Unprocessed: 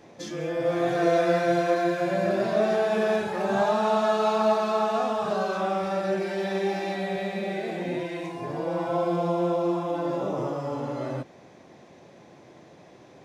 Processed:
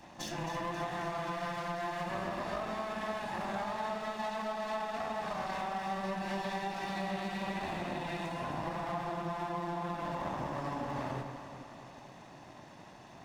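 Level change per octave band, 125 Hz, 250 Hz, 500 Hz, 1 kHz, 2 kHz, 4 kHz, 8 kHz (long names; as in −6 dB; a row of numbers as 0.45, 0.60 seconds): −7.5, −11.5, −15.0, −7.5, −7.0, −6.5, −5.5 decibels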